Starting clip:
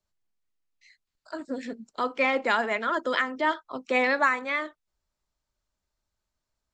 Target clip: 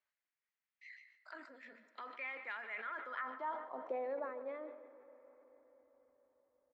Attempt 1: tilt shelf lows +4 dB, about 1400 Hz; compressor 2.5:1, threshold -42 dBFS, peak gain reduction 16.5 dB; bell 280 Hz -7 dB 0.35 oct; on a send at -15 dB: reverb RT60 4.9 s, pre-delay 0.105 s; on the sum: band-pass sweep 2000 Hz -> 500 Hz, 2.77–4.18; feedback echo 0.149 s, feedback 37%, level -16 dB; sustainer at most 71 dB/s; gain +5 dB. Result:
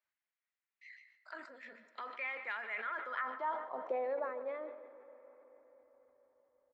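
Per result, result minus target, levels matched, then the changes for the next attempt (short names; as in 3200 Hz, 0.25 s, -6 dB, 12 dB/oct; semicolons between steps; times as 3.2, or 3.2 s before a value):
250 Hz band -4.5 dB; compressor: peak gain reduction -4 dB
remove: bell 280 Hz -7 dB 0.35 oct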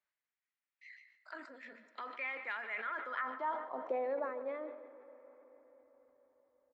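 compressor: peak gain reduction -4 dB
change: compressor 2.5:1, threshold -48.5 dBFS, peak gain reduction 20.5 dB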